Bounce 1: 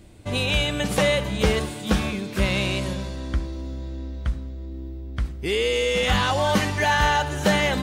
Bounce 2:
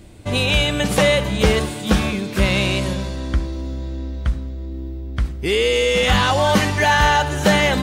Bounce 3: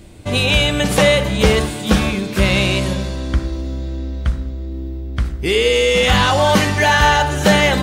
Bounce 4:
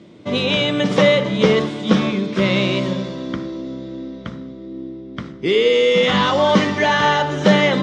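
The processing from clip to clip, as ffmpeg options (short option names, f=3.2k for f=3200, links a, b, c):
-af "acontrast=31"
-af "bandreject=f=51.56:t=h:w=4,bandreject=f=103.12:t=h:w=4,bandreject=f=154.68:t=h:w=4,bandreject=f=206.24:t=h:w=4,bandreject=f=257.8:t=h:w=4,bandreject=f=309.36:t=h:w=4,bandreject=f=360.92:t=h:w=4,bandreject=f=412.48:t=h:w=4,bandreject=f=464.04:t=h:w=4,bandreject=f=515.6:t=h:w=4,bandreject=f=567.16:t=h:w=4,bandreject=f=618.72:t=h:w=4,bandreject=f=670.28:t=h:w=4,bandreject=f=721.84:t=h:w=4,bandreject=f=773.4:t=h:w=4,bandreject=f=824.96:t=h:w=4,bandreject=f=876.52:t=h:w=4,bandreject=f=928.08:t=h:w=4,bandreject=f=979.64:t=h:w=4,bandreject=f=1.0312k:t=h:w=4,bandreject=f=1.08276k:t=h:w=4,bandreject=f=1.13432k:t=h:w=4,bandreject=f=1.18588k:t=h:w=4,bandreject=f=1.23744k:t=h:w=4,bandreject=f=1.289k:t=h:w=4,bandreject=f=1.34056k:t=h:w=4,bandreject=f=1.39212k:t=h:w=4,bandreject=f=1.44368k:t=h:w=4,bandreject=f=1.49524k:t=h:w=4,bandreject=f=1.5468k:t=h:w=4,bandreject=f=1.59836k:t=h:w=4,bandreject=f=1.64992k:t=h:w=4,bandreject=f=1.70148k:t=h:w=4,bandreject=f=1.75304k:t=h:w=4,bandreject=f=1.8046k:t=h:w=4,bandreject=f=1.85616k:t=h:w=4,bandreject=f=1.90772k:t=h:w=4,bandreject=f=1.95928k:t=h:w=4,bandreject=f=2.01084k:t=h:w=4,bandreject=f=2.0624k:t=h:w=4,volume=3dB"
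-af "highpass=f=150:w=0.5412,highpass=f=150:w=1.3066,equalizer=f=780:t=q:w=4:g=-8,equalizer=f=1.6k:t=q:w=4:g=-7,equalizer=f=2.6k:t=q:w=4:g=-8,equalizer=f=4.4k:t=q:w=4:g=-8,lowpass=f=4.9k:w=0.5412,lowpass=f=4.9k:w=1.3066,volume=1.5dB"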